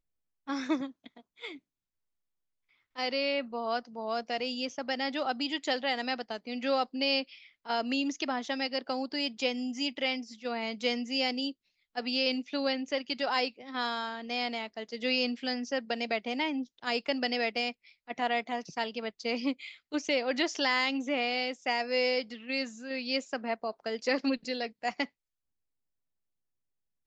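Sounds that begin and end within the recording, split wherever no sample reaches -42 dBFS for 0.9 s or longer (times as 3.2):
2.96–25.05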